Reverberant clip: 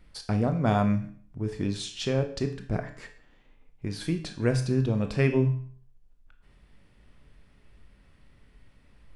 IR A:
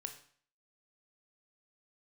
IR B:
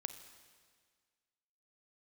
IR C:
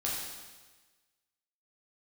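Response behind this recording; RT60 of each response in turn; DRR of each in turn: A; 0.50 s, 1.7 s, 1.3 s; 6.0 dB, 9.5 dB, -5.5 dB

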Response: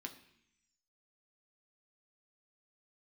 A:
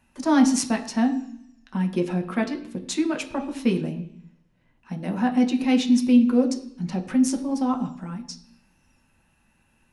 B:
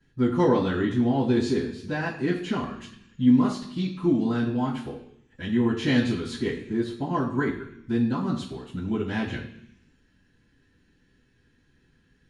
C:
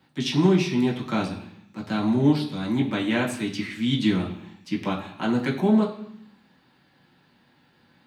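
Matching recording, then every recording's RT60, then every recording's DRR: A; 0.70 s, 0.70 s, 0.70 s; 3.5 dB, -14.0 dB, -4.5 dB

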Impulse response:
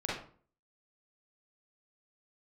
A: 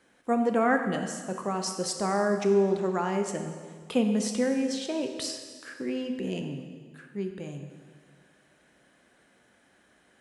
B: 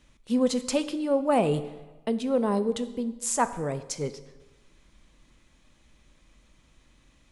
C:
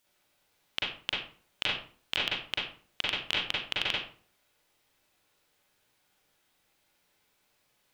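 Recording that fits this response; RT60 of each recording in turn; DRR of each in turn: C; 1.8 s, 1.2 s, 0.45 s; 4.5 dB, 11.5 dB, -6.5 dB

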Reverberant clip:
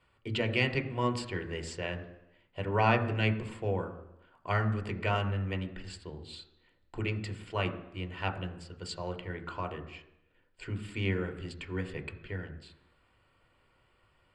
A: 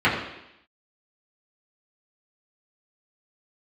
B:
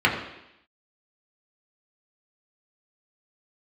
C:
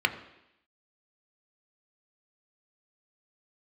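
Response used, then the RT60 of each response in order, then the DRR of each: C; 0.85 s, 0.85 s, 0.85 s; -9.5 dB, -3.0 dB, 6.5 dB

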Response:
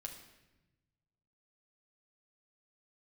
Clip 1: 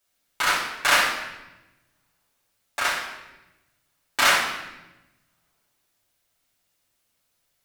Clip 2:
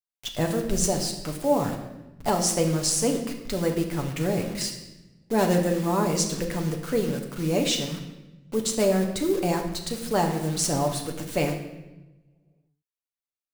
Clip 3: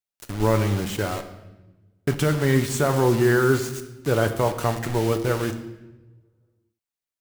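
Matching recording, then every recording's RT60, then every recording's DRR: 2; 1.0 s, 1.0 s, 1.0 s; -6.0 dB, 1.5 dB, 6.0 dB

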